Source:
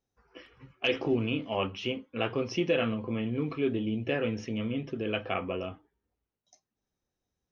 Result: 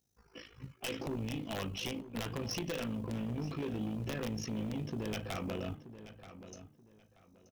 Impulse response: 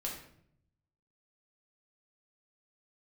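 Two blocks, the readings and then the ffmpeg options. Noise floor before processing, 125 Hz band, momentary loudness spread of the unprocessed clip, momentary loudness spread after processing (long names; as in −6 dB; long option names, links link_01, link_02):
below −85 dBFS, −3.0 dB, 6 LU, 14 LU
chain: -filter_complex "[0:a]highpass=frequency=130:poles=1,bass=frequency=250:gain=13,treble=frequency=4000:gain=14,acompressor=threshold=-26dB:ratio=16,aeval=exprs='(mod(10.6*val(0)+1,2)-1)/10.6':channel_layout=same,tremolo=f=53:d=0.75,asoftclip=type=tanh:threshold=-33.5dB,acrusher=bits=8:mode=log:mix=0:aa=0.000001,asplit=2[link_01][link_02];[link_02]adelay=930,lowpass=frequency=3800:poles=1,volume=-13dB,asplit=2[link_03][link_04];[link_04]adelay=930,lowpass=frequency=3800:poles=1,volume=0.26,asplit=2[link_05][link_06];[link_06]adelay=930,lowpass=frequency=3800:poles=1,volume=0.26[link_07];[link_01][link_03][link_05][link_07]amix=inputs=4:normalize=0,volume=1dB"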